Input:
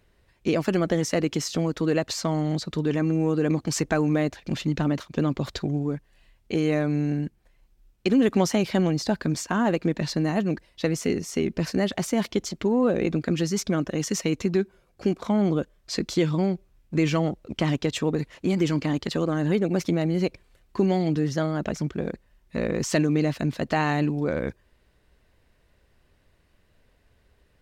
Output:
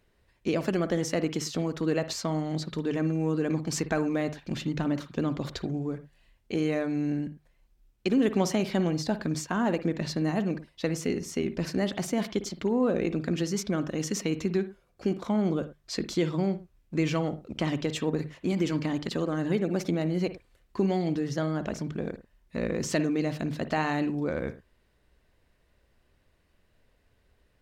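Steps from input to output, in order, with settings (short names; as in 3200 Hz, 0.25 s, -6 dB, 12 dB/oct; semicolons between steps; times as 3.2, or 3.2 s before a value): notches 50/100/150 Hz; reverb, pre-delay 51 ms, DRR 12.5 dB; gain -4 dB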